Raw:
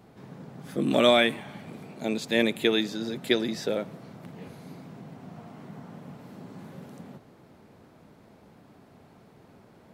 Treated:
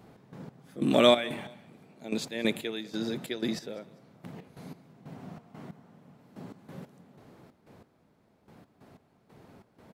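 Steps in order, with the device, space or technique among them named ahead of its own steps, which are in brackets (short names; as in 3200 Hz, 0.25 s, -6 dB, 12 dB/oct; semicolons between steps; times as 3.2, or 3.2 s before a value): trance gate with a delay (step gate "x.x..xx.x...." 92 bpm -12 dB; feedback echo 0.199 s, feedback 32%, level -22 dB)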